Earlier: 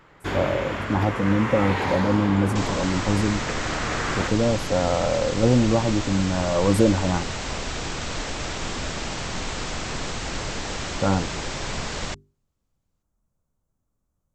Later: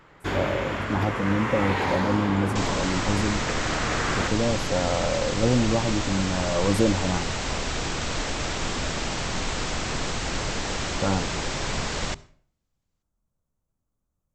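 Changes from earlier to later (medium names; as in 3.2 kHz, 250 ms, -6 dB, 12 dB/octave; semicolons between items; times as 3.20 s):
speech -3.5 dB; second sound: send on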